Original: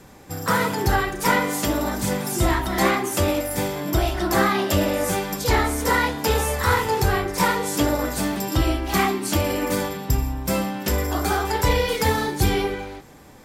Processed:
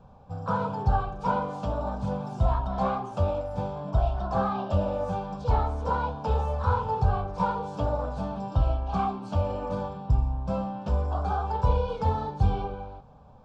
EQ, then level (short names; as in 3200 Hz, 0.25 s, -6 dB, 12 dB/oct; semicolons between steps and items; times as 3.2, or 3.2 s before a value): tape spacing loss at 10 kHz 43 dB; fixed phaser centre 810 Hz, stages 4; 0.0 dB